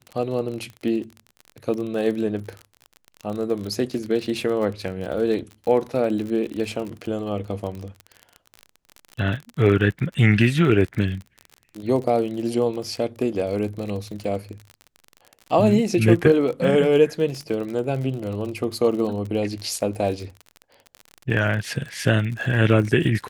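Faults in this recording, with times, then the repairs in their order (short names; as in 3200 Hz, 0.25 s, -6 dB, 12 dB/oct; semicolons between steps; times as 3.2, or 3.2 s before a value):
crackle 39/s -29 dBFS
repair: de-click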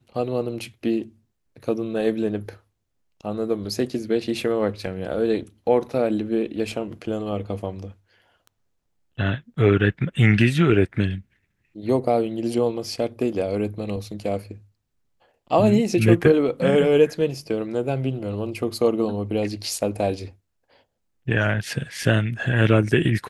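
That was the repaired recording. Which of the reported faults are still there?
none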